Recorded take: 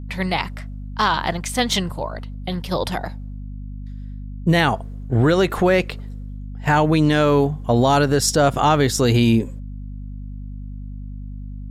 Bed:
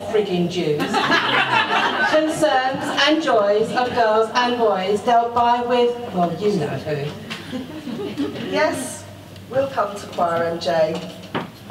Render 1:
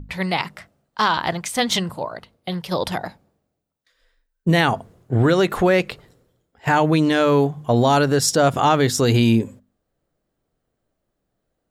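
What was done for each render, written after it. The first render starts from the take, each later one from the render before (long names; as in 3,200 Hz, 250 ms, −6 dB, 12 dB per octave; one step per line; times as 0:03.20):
mains-hum notches 50/100/150/200/250 Hz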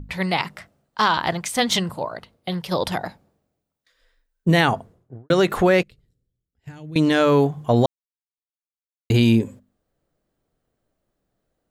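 0:04.62–0:05.30: fade out and dull
0:05.83–0:06.96: guitar amp tone stack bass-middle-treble 10-0-1
0:07.86–0:09.10: silence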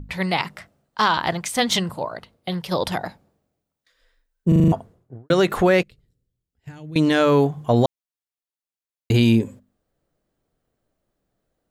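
0:04.48: stutter in place 0.04 s, 6 plays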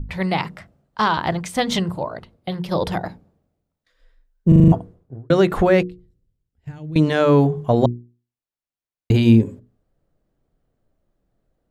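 spectral tilt −2 dB per octave
mains-hum notches 60/120/180/240/300/360/420/480 Hz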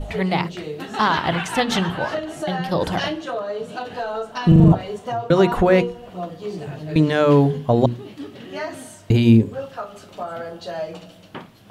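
mix in bed −10.5 dB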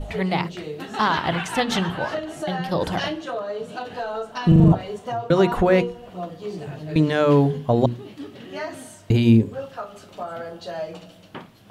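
level −2 dB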